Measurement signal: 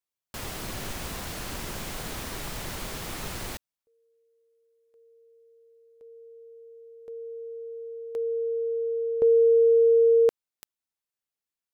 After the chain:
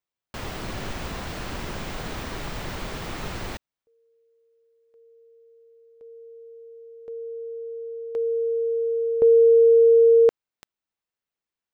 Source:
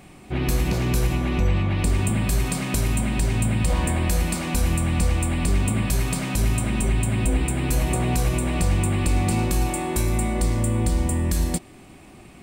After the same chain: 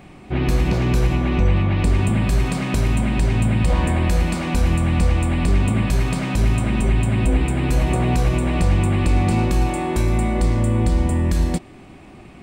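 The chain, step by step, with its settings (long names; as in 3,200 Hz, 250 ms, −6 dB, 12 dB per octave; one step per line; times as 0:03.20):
parametric band 13,000 Hz −15 dB 1.5 octaves
level +4 dB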